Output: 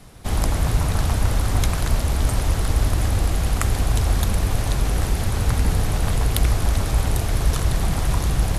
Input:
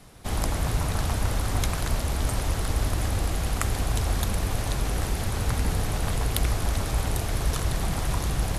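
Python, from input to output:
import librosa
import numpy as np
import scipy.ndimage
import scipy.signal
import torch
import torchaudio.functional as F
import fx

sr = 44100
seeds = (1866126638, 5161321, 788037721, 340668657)

y = fx.low_shelf(x, sr, hz=170.0, db=4.0)
y = y * librosa.db_to_amplitude(3.0)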